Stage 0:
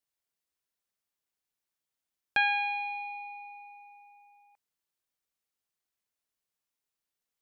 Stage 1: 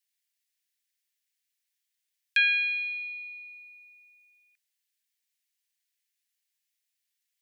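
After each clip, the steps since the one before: steep high-pass 1700 Hz 48 dB/oct; gain +6 dB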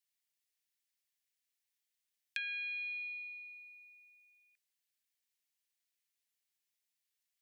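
compressor 6:1, threshold -33 dBFS, peak gain reduction 13 dB; gain -5 dB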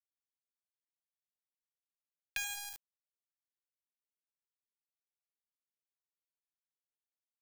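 bit-crush 6-bit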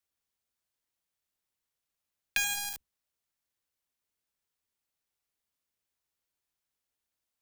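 octaver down 2 oct, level -1 dB; gain +8.5 dB

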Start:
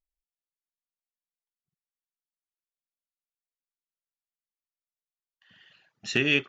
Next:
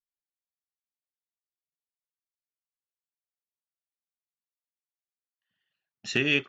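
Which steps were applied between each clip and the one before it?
gate -52 dBFS, range -23 dB; gain -1 dB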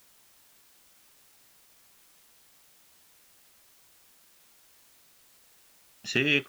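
requantised 10-bit, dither triangular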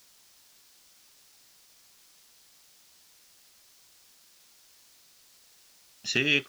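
bell 5100 Hz +8 dB 1.3 oct; gain -2 dB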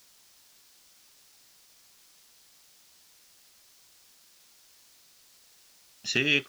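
nothing audible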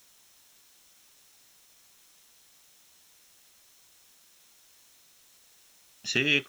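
notch 4700 Hz, Q 7.2

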